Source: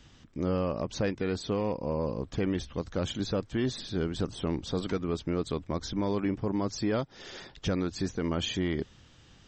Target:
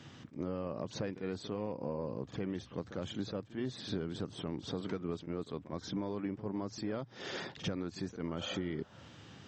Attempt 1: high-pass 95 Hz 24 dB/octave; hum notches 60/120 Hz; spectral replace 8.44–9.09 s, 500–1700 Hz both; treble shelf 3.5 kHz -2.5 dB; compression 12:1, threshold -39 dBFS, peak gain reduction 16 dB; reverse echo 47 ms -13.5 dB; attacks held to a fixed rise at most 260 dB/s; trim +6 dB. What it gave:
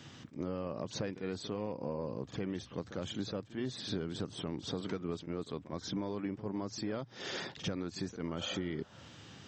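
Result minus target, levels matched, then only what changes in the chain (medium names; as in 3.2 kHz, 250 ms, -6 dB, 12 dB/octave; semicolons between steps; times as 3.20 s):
8 kHz band +4.0 dB
change: treble shelf 3.5 kHz -8.5 dB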